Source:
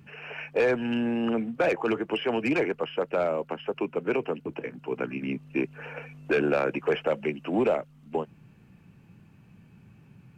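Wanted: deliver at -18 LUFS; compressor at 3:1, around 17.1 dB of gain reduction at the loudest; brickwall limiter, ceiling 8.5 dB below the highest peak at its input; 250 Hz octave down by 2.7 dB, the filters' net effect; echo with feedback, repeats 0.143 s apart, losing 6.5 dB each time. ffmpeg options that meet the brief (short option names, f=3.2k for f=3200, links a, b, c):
-af "equalizer=f=250:t=o:g=-3.5,acompressor=threshold=-45dB:ratio=3,alimiter=level_in=13dB:limit=-24dB:level=0:latency=1,volume=-13dB,aecho=1:1:143|286|429|572|715|858:0.473|0.222|0.105|0.0491|0.0231|0.0109,volume=28.5dB"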